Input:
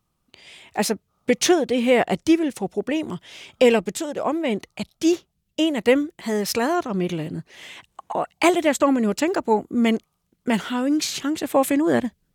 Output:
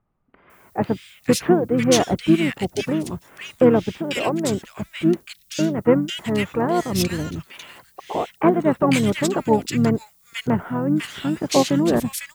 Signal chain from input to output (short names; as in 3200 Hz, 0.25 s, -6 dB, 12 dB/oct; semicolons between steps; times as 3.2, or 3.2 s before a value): harmoniser -12 st -8 dB, -7 st -9 dB; added noise violet -58 dBFS; bands offset in time lows, highs 0.5 s, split 1700 Hz